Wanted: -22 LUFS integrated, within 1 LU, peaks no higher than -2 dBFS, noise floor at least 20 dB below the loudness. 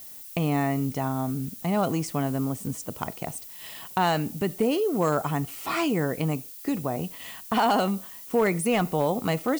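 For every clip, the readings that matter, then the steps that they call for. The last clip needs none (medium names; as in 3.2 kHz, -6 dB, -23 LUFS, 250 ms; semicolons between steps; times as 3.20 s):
clipped samples 0.3%; clipping level -15.0 dBFS; noise floor -43 dBFS; noise floor target -47 dBFS; loudness -27.0 LUFS; peak level -15.0 dBFS; loudness target -22.0 LUFS
-> clip repair -15 dBFS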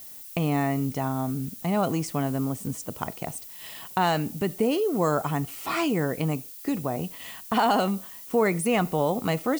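clipped samples 0.0%; noise floor -43 dBFS; noise floor target -47 dBFS
-> noise print and reduce 6 dB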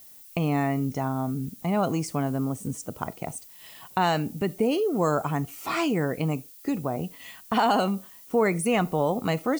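noise floor -49 dBFS; loudness -27.0 LUFS; peak level -11.0 dBFS; loudness target -22.0 LUFS
-> trim +5 dB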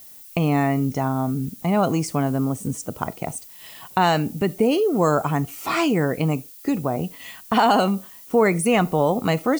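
loudness -22.0 LUFS; peak level -6.0 dBFS; noise floor -44 dBFS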